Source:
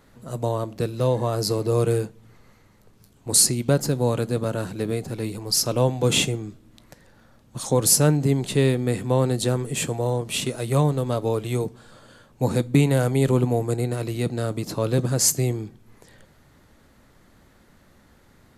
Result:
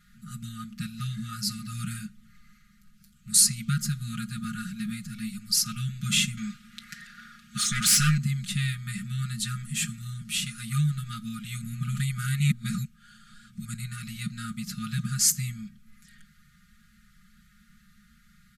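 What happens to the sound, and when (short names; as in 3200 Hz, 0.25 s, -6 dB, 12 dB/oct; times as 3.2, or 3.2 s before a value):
6.37–8.18 overdrive pedal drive 22 dB, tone 3800 Hz, clips at -5 dBFS
11.61–13.65 reverse
whole clip: FFT band-reject 230–1200 Hz; comb 4.9 ms, depth 86%; gain -4.5 dB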